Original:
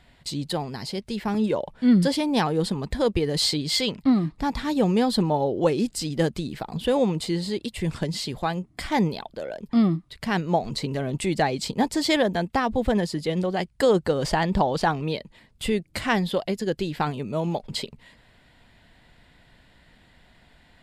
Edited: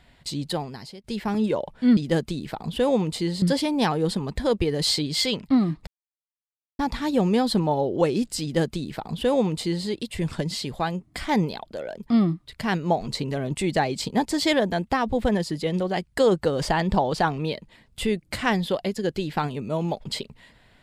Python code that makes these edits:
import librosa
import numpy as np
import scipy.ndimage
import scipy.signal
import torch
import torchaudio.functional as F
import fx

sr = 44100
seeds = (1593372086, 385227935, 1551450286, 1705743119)

y = fx.edit(x, sr, fx.fade_out_to(start_s=0.55, length_s=0.49, floor_db=-19.5),
    fx.insert_silence(at_s=4.42, length_s=0.92),
    fx.duplicate(start_s=6.05, length_s=1.45, to_s=1.97), tone=tone)